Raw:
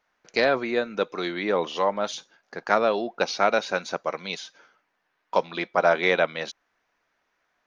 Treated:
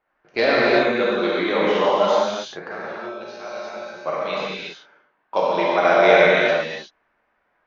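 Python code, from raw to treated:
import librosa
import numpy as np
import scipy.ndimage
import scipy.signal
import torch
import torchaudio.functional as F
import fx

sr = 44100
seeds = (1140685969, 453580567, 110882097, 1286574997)

y = fx.env_lowpass(x, sr, base_hz=1900.0, full_db=-17.0)
y = fx.comb_fb(y, sr, f0_hz=120.0, decay_s=1.0, harmonics='odd', damping=0.0, mix_pct=90, at=(2.68, 4.03))
y = fx.rev_gated(y, sr, seeds[0], gate_ms=400, shape='flat', drr_db=-7.5)
y = y * librosa.db_to_amplitude(-1.0)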